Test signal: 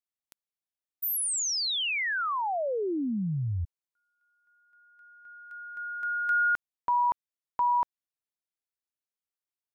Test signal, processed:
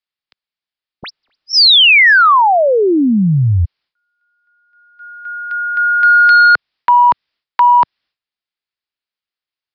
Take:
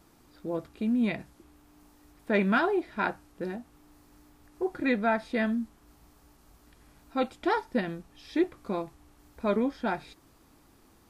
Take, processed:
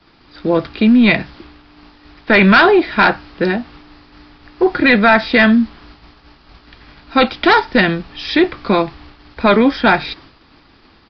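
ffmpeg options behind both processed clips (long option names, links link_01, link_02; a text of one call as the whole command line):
ffmpeg -i in.wav -filter_complex "[0:a]agate=range=-15dB:threshold=-52dB:ratio=3:release=318:detection=peak,acrossover=split=130|450|1300[link_01][link_02][link_03][link_04];[link_04]aeval=exprs='0.106*sin(PI/2*1.58*val(0)/0.106)':channel_layout=same[link_05];[link_01][link_02][link_03][link_05]amix=inputs=4:normalize=0,apsyclip=23dB,aresample=11025,aresample=44100,volume=-5dB" out.wav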